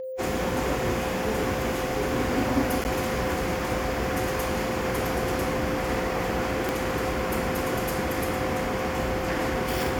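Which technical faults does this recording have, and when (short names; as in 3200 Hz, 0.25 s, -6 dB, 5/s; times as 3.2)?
tone 520 Hz -31 dBFS
2.84–2.85 gap 9.2 ms
6.69 pop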